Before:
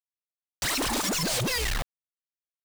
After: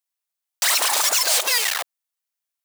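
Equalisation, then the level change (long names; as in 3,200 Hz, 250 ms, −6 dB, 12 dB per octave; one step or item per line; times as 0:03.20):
high-pass filter 590 Hz 24 dB per octave
high-shelf EQ 6,300 Hz +6 dB
+7.0 dB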